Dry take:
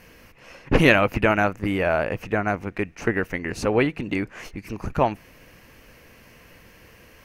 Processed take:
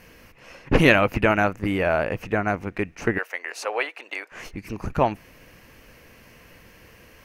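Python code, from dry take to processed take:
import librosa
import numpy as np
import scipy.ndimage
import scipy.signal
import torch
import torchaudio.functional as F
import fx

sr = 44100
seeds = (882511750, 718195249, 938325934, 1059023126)

y = fx.highpass(x, sr, hz=570.0, slope=24, at=(3.18, 4.32))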